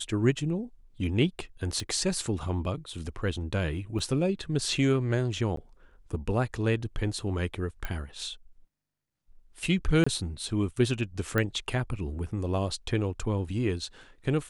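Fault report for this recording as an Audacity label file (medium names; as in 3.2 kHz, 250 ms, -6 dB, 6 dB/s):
1.800000	1.800000	pop -20 dBFS
3.990000	3.990000	dropout 3.8 ms
5.560000	5.570000	dropout 13 ms
7.850000	7.850000	pop -19 dBFS
10.040000	10.060000	dropout 25 ms
11.380000	11.380000	pop -14 dBFS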